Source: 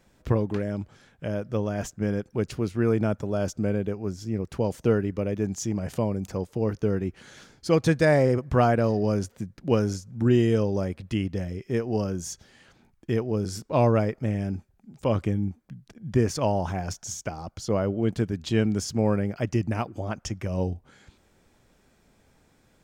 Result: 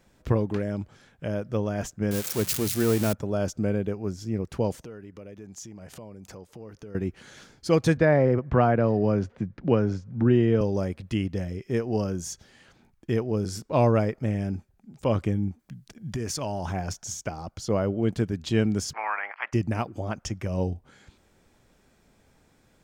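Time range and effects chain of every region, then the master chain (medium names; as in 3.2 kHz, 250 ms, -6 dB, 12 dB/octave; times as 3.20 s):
2.11–3.13 s: zero-crossing glitches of -18.5 dBFS + hum notches 60/120/180 Hz
4.81–6.95 s: compression 4:1, threshold -38 dBFS + bass shelf 320 Hz -5.5 dB
7.97–10.61 s: low-pass 2.5 kHz + three bands compressed up and down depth 40%
15.59–16.66 s: treble shelf 2.7 kHz +8 dB + band-stop 500 Hz + compression 5:1, threshold -27 dBFS
18.92–19.52 s: spectral peaks clipped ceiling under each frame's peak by 26 dB + Chebyshev band-pass 910–2200 Hz + distance through air 180 m
whole clip: none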